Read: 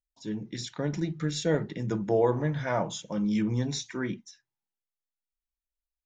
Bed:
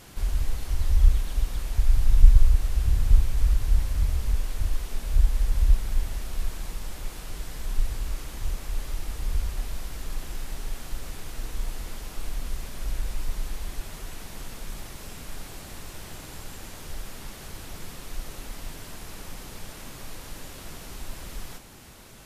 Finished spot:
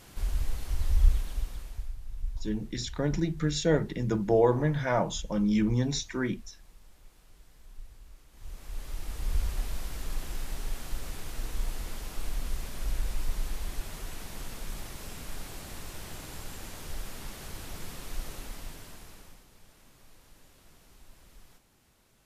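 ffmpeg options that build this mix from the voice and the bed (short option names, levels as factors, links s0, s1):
-filter_complex "[0:a]adelay=2200,volume=1.19[s0];[1:a]volume=5.96,afade=t=out:st=1.11:d=0.84:silence=0.141254,afade=t=in:st=8.31:d=1.13:silence=0.105925,afade=t=out:st=18.25:d=1.2:silence=0.158489[s1];[s0][s1]amix=inputs=2:normalize=0"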